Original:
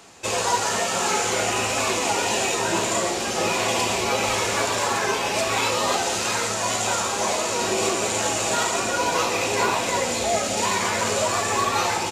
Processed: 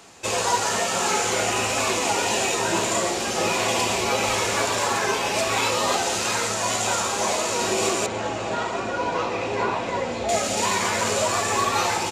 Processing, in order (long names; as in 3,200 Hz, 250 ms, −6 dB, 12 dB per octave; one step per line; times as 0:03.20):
0:08.06–0:10.29: head-to-tape spacing loss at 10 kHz 24 dB